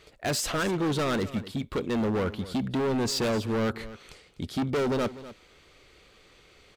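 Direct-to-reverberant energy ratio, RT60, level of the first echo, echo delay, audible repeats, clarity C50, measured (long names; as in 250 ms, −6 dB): no reverb audible, no reverb audible, −16.0 dB, 249 ms, 1, no reverb audible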